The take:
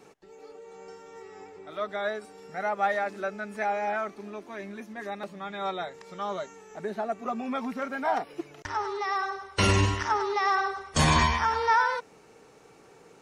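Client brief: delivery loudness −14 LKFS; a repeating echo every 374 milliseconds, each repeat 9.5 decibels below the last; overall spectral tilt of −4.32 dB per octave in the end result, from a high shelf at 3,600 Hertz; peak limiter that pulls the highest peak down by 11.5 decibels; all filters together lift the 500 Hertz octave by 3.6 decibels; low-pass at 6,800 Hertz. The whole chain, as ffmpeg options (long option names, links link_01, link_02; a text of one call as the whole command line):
ffmpeg -i in.wav -af "lowpass=6800,equalizer=frequency=500:width_type=o:gain=5,highshelf=frequency=3600:gain=-8,alimiter=limit=-21.5dB:level=0:latency=1,aecho=1:1:374|748|1122|1496:0.335|0.111|0.0365|0.012,volume=17.5dB" out.wav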